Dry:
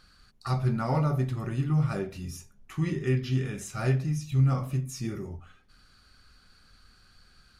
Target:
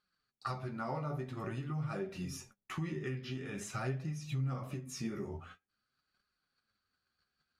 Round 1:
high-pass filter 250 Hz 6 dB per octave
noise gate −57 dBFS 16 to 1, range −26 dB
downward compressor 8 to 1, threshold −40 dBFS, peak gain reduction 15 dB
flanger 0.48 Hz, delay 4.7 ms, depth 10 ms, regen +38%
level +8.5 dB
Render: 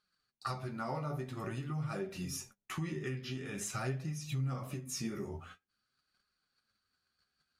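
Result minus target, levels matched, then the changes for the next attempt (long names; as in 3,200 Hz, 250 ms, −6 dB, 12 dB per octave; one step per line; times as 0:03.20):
8,000 Hz band +5.5 dB
add after downward compressor: high-shelf EQ 5,500 Hz −9.5 dB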